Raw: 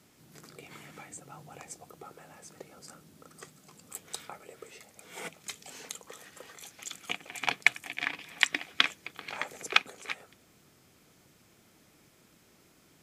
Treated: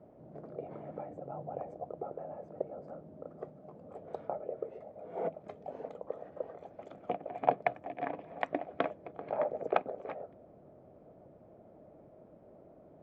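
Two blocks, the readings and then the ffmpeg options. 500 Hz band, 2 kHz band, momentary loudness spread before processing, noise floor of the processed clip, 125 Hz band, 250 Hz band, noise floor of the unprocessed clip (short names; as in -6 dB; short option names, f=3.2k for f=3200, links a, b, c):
+12.5 dB, -16.0 dB, 23 LU, -58 dBFS, +4.0 dB, +5.5 dB, -63 dBFS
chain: -af "lowpass=f=620:t=q:w=4.9,volume=3.5dB"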